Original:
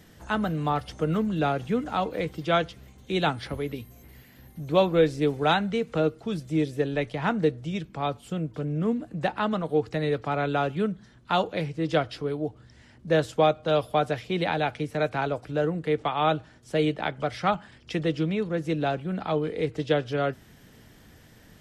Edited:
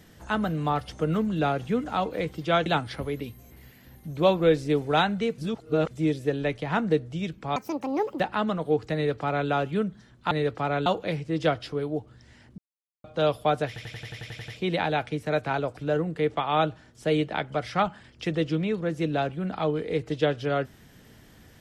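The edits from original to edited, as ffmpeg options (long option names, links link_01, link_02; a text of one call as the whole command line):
ffmpeg -i in.wav -filter_complex "[0:a]asplit=19[link_01][link_02][link_03][link_04][link_05][link_06][link_07][link_08][link_09][link_10][link_11][link_12][link_13][link_14][link_15][link_16][link_17][link_18][link_19];[link_01]atrim=end=2.662[link_20];[link_02]atrim=start=3.178:end=5.902[link_21];[link_03]atrim=start=5.898:end=6.432,asetpts=PTS-STARTPTS,areverse[link_22];[link_04]atrim=start=6.428:end=8.084[link_23];[link_05]atrim=start=8.08:end=9.24,asetpts=PTS-STARTPTS,asetrate=79821,aresample=44100[link_24];[link_06]atrim=start=9.236:end=11.352[link_25];[link_07]atrim=start=9.978:end=10.532[link_26];[link_08]atrim=start=11.348:end=13.07,asetpts=PTS-STARTPTS,afade=type=out:start_time=1.718:duration=0.004:curve=hsin[link_27];[link_09]atrim=start=13.07:end=13.53,asetpts=PTS-STARTPTS,volume=0[link_28];[link_10]atrim=start=13.53:end=14.252,asetpts=PTS-STARTPTS,afade=type=in:duration=0.004:curve=hsin[link_29];[link_11]atrim=start=14.158:end=14.252[link_30];[link_12]atrim=start=14.158:end=14.252[link_31];[link_13]atrim=start=14.158:end=14.252[link_32];[link_14]atrim=start=14.158:end=14.252[link_33];[link_15]atrim=start=14.158:end=14.252[link_34];[link_16]atrim=start=14.158:end=14.252[link_35];[link_17]atrim=start=14.158:end=14.252[link_36];[link_18]atrim=start=14.158:end=14.252[link_37];[link_19]atrim=start=14.158[link_38];[link_20][link_21]acrossfade=duration=0.004:curve1=hsin:curve2=hsin[link_39];[link_39][link_22]acrossfade=duration=0.004:curve1=hsin:curve2=hsin[link_40];[link_40][link_23]acrossfade=duration=0.004:curve1=hsin:curve2=hsin[link_41];[link_41][link_24]acrossfade=duration=0.004:curve1=hsin:curve2=hsin[link_42];[link_42][link_25]acrossfade=duration=0.004:curve1=hsin:curve2=hsin[link_43];[link_43][link_26]acrossfade=duration=0.004:curve1=hsin:curve2=hsin[link_44];[link_27][link_28][link_29]concat=n=3:v=0:a=1[link_45];[link_44][link_45]acrossfade=duration=0.004:curve1=hsin:curve2=hsin[link_46];[link_46][link_30]acrossfade=duration=0.004:curve1=hsin:curve2=hsin[link_47];[link_47][link_31]acrossfade=duration=0.004:curve1=hsin:curve2=hsin[link_48];[link_48][link_32]acrossfade=duration=0.004:curve1=hsin:curve2=hsin[link_49];[link_49][link_33]acrossfade=duration=0.004:curve1=hsin:curve2=hsin[link_50];[link_50][link_34]acrossfade=duration=0.004:curve1=hsin:curve2=hsin[link_51];[link_51][link_35]acrossfade=duration=0.004:curve1=hsin:curve2=hsin[link_52];[link_52][link_36]acrossfade=duration=0.004:curve1=hsin:curve2=hsin[link_53];[link_53][link_37]acrossfade=duration=0.004:curve1=hsin:curve2=hsin[link_54];[link_54][link_38]acrossfade=duration=0.004:curve1=hsin:curve2=hsin" out.wav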